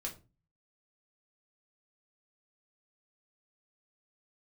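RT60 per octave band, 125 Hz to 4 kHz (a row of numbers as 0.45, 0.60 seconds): 0.65, 0.50, 0.35, 0.30, 0.25, 0.20 seconds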